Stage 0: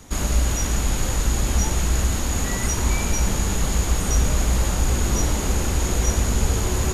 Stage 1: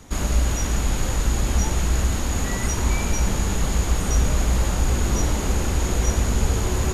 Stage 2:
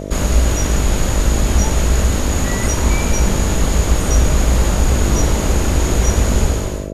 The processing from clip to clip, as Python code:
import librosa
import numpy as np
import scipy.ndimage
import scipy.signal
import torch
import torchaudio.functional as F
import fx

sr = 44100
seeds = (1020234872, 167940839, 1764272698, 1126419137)

y1 = fx.high_shelf(x, sr, hz=4900.0, db=-4.5)
y2 = fx.fade_out_tail(y1, sr, length_s=0.55)
y2 = fx.dmg_buzz(y2, sr, base_hz=50.0, harmonics=13, level_db=-33.0, tilt_db=-1, odd_only=False)
y2 = y2 * librosa.db_to_amplitude(6.0)